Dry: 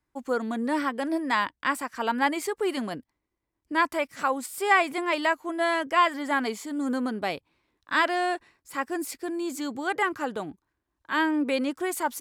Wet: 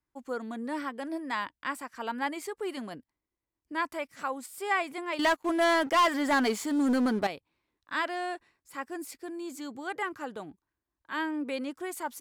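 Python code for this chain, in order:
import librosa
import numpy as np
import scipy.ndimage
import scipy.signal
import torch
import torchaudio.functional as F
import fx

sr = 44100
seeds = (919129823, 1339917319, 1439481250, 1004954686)

y = fx.leveller(x, sr, passes=3, at=(5.19, 7.27))
y = y * librosa.db_to_amplitude(-7.5)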